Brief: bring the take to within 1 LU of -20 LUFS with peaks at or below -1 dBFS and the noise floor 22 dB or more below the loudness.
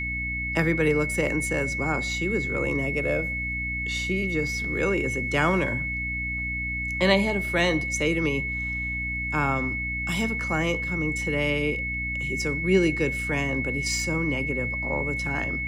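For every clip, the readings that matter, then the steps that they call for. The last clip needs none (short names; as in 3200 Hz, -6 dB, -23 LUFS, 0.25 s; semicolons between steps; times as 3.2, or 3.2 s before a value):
hum 60 Hz; harmonics up to 300 Hz; hum level -32 dBFS; steady tone 2200 Hz; tone level -28 dBFS; loudness -25.0 LUFS; peak -6.5 dBFS; loudness target -20.0 LUFS
-> de-hum 60 Hz, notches 5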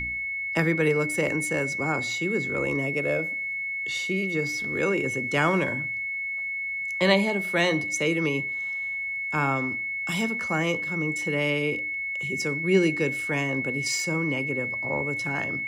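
hum none; steady tone 2200 Hz; tone level -28 dBFS
-> notch 2200 Hz, Q 30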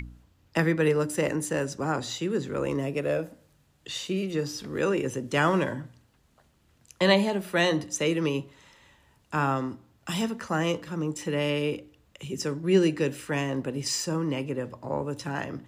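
steady tone none; loudness -28.0 LUFS; peak -7.5 dBFS; loudness target -20.0 LUFS
-> gain +8 dB; limiter -1 dBFS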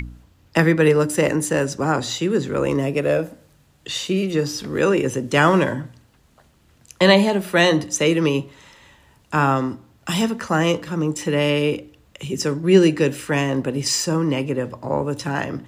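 loudness -20.0 LUFS; peak -1.0 dBFS; noise floor -56 dBFS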